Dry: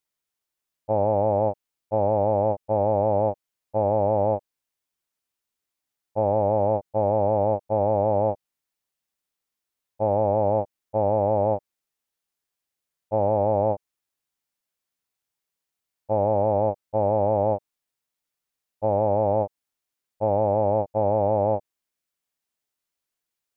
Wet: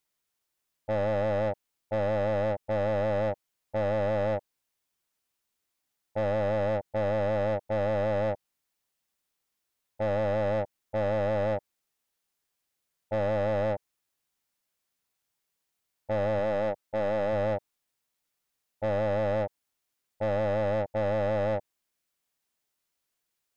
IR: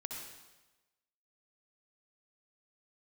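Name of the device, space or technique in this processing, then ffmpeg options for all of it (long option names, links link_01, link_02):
saturation between pre-emphasis and de-emphasis: -filter_complex "[0:a]highshelf=frequency=2000:gain=10.5,asoftclip=type=tanh:threshold=-27dB,highshelf=frequency=2000:gain=-10.5,asettb=1/sr,asplit=3[link_01][link_02][link_03];[link_01]atrim=end=16.394[link_04];[link_02]atrim=start=16.39:end=17.33,asetpts=PTS-STARTPTS,afade=type=in:duration=0.004:curve=qsin,afade=type=out:start_time=0.936:duration=0.004:curve=qsin,equalizer=frequency=83:width=1.5:gain=-11[link_05];[link_03]atrim=start=17.326[link_06];[link_04][link_05]acrossfade=duration=0.004:curve1=hsin:curve2=qsin[link_07];[link_07][link_06]acrossfade=duration=0.004:curve1=qsin:curve2=hsin,volume=3dB"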